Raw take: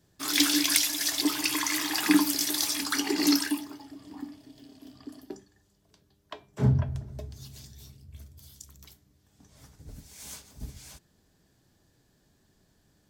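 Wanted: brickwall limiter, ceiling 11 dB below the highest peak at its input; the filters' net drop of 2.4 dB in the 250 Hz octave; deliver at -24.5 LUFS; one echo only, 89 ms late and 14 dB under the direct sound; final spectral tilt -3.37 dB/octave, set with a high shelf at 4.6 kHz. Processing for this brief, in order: peaking EQ 250 Hz -3 dB; treble shelf 4.6 kHz -4 dB; peak limiter -19 dBFS; delay 89 ms -14 dB; trim +5.5 dB

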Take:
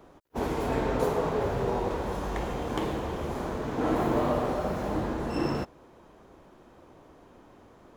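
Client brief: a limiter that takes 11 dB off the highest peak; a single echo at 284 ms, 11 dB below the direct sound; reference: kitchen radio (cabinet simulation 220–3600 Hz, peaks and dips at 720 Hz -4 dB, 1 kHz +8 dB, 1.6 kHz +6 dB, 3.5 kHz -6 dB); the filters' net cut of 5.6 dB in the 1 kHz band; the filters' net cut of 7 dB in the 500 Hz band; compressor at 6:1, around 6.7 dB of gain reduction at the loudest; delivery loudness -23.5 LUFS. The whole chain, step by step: peaking EQ 500 Hz -6 dB; peaking EQ 1 kHz -9 dB; compression 6:1, threshold -33 dBFS; peak limiter -32.5 dBFS; cabinet simulation 220–3600 Hz, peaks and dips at 720 Hz -4 dB, 1 kHz +8 dB, 1.6 kHz +6 dB, 3.5 kHz -6 dB; delay 284 ms -11 dB; trim +20 dB

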